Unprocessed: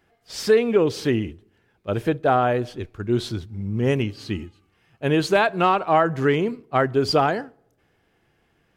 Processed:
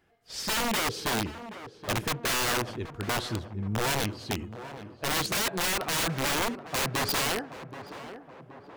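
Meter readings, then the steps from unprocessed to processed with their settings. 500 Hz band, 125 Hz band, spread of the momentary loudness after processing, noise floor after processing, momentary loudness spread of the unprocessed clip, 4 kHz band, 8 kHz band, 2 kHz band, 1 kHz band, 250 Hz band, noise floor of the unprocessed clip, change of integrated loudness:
-13.5 dB, -8.0 dB, 16 LU, -53 dBFS, 13 LU, +2.5 dB, +9.5 dB, -2.5 dB, -9.0 dB, -10.0 dB, -66 dBFS, -7.0 dB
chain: wrapped overs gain 18.5 dB; tape echo 0.775 s, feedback 66%, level -9 dB, low-pass 1300 Hz; gain -4 dB

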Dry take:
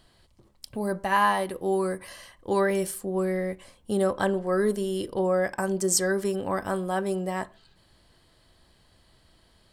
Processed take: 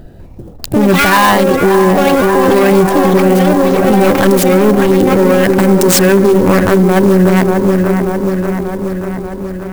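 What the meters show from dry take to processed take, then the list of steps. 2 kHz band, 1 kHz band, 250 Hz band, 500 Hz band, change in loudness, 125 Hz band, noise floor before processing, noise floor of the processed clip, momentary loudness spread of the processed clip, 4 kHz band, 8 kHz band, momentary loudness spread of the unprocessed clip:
+16.5 dB, +15.5 dB, +21.5 dB, +17.5 dB, +17.0 dB, +22.0 dB, -62 dBFS, -30 dBFS, 10 LU, +17.5 dB, +11.5 dB, 11 LU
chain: Wiener smoothing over 41 samples; dynamic EQ 700 Hz, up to -6 dB, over -39 dBFS, Q 1.2; soft clip -27.5 dBFS, distortion -10 dB; echoes that change speed 0.2 s, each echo +6 st, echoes 3, each echo -6 dB; on a send: dark delay 0.586 s, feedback 65%, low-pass 2000 Hz, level -8 dB; on the sum: maximiser +29.5 dB; clock jitter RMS 0.022 ms; gain -1 dB

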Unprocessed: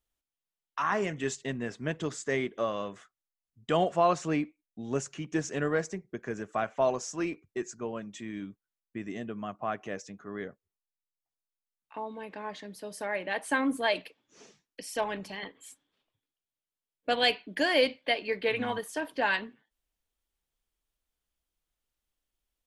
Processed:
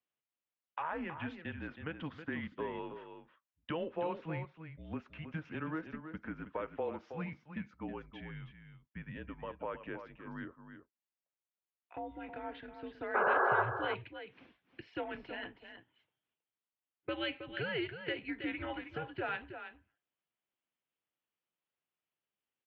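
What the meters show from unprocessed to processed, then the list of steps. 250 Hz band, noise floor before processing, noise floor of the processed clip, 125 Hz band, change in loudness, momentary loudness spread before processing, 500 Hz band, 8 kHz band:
-7.5 dB, under -85 dBFS, under -85 dBFS, -5.0 dB, -8.0 dB, 15 LU, -9.0 dB, under -35 dB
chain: mistuned SSB -160 Hz 220–3400 Hz; compressor 2.5:1, threshold -34 dBFS, peak gain reduction 10 dB; painted sound noise, 13.14–13.63, 360–1700 Hz -26 dBFS; HPF 140 Hz 6 dB/oct; on a send: echo 0.32 s -9.5 dB; on the sum: gain -3 dB

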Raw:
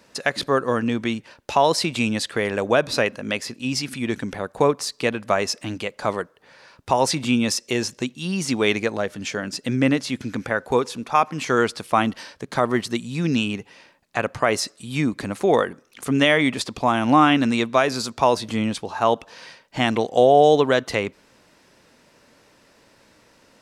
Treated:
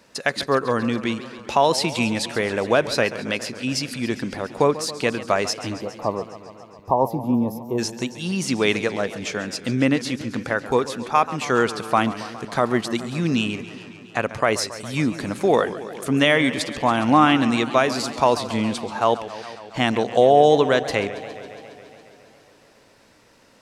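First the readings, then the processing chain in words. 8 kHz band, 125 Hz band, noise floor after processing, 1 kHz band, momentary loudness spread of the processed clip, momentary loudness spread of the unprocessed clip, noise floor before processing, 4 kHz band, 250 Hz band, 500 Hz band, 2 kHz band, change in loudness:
-1.0 dB, 0.0 dB, -53 dBFS, +0.5 dB, 11 LU, 10 LU, -57 dBFS, 0.0 dB, 0.0 dB, +0.5 dB, 0.0 dB, 0.0 dB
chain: spectral gain 5.74–7.78, 1200–11000 Hz -28 dB; warbling echo 0.138 s, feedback 75%, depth 156 cents, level -15 dB

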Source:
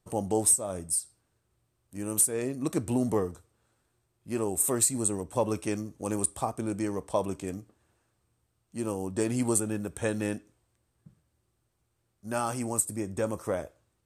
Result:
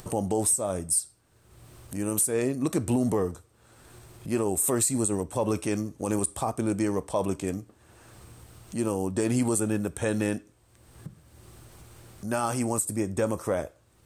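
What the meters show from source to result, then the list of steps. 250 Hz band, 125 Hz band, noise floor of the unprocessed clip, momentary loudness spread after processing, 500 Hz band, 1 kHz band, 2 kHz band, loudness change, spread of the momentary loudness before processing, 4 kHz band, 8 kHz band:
+4.0 dB, +4.0 dB, -76 dBFS, 13 LU, +2.5 dB, +2.0 dB, +3.5 dB, +1.5 dB, 12 LU, +2.0 dB, 0.0 dB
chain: upward compressor, threshold -36 dBFS; limiter -20 dBFS, peak gain reduction 7.5 dB; gain +5 dB

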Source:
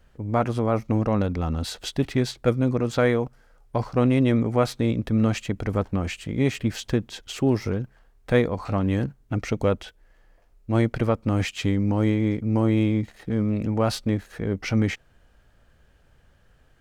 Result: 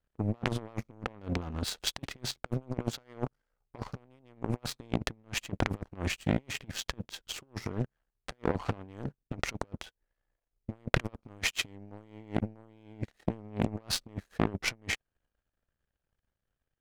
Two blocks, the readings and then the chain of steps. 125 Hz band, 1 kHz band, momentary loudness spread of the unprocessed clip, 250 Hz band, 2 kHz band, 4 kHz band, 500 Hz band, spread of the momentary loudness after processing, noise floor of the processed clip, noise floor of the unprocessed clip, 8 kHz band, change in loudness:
-12.5 dB, -9.5 dB, 7 LU, -14.0 dB, -4.0 dB, -1.5 dB, -14.5 dB, 13 LU, under -85 dBFS, -59 dBFS, -0.5 dB, -11.0 dB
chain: negative-ratio compressor -28 dBFS, ratio -0.5; power-law curve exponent 2; Doppler distortion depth 0.57 ms; gain +6.5 dB

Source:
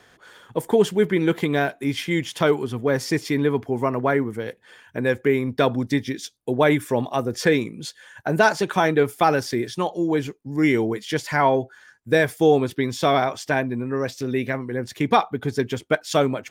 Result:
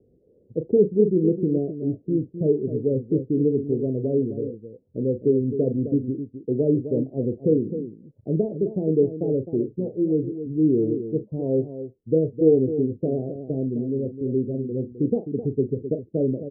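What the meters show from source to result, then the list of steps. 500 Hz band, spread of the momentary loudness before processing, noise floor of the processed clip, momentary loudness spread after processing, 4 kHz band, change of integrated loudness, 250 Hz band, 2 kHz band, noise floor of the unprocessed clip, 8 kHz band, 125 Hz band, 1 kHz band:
-1.0 dB, 8 LU, -60 dBFS, 9 LU, under -40 dB, -2.0 dB, +1.0 dB, under -40 dB, -56 dBFS, under -40 dB, +0.5 dB, under -25 dB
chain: steep low-pass 500 Hz 48 dB/oct; loudspeakers at several distances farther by 13 m -11 dB, 89 m -10 dB

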